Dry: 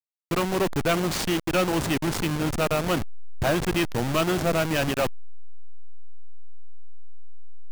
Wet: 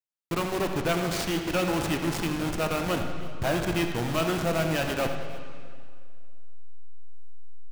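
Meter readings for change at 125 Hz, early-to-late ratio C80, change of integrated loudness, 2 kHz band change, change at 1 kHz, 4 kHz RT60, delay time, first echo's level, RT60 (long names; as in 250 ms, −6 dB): −2.5 dB, 6.0 dB, −3.0 dB, −2.5 dB, −2.5 dB, 1.9 s, 82 ms, −11.5 dB, 2.1 s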